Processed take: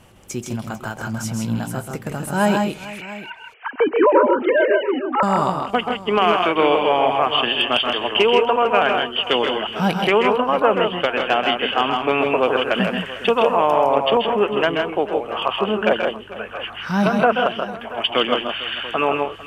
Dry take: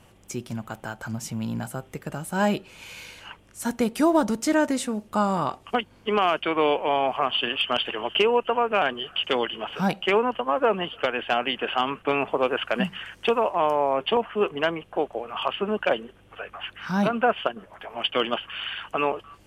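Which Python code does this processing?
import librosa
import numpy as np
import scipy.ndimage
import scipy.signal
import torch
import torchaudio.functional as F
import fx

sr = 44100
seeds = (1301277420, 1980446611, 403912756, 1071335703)

y = fx.sine_speech(x, sr, at=(2.85, 5.23))
y = fx.echo_multitap(y, sr, ms=(132, 160, 449, 685), db=(-7.0, -5.5, -17.5, -16.5))
y = y * 10.0 ** (4.5 / 20.0)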